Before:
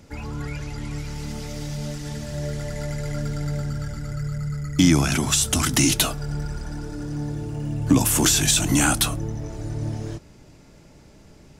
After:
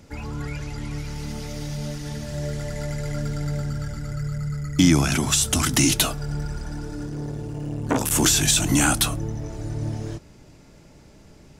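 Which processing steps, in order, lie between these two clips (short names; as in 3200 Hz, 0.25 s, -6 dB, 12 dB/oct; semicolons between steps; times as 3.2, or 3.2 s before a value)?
0.84–2.28 notch 7600 Hz, Q 12; 7.06–8.12 core saturation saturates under 970 Hz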